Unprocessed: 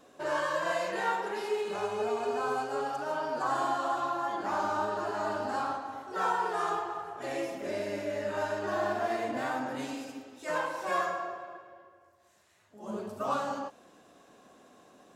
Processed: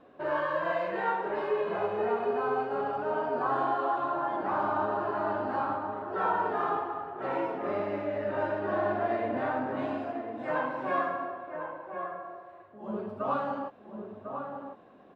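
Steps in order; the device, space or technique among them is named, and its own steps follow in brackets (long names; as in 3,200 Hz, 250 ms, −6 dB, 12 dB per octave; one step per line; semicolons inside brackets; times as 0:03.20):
shout across a valley (high-frequency loss of the air 470 metres; slap from a distant wall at 180 metres, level −6 dB)
level +3 dB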